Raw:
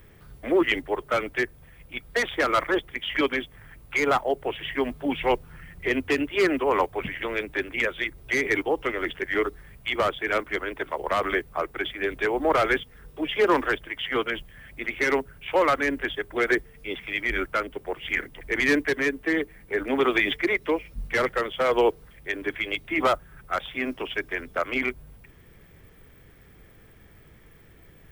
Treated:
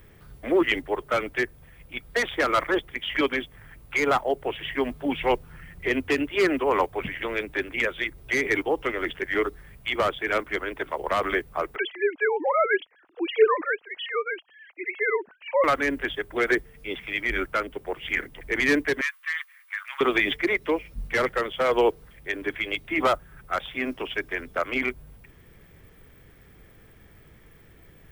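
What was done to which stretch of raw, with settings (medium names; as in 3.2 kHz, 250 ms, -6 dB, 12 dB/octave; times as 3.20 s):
11.76–15.64 s: formants replaced by sine waves
19.01–20.01 s: elliptic high-pass 1.1 kHz, stop band 70 dB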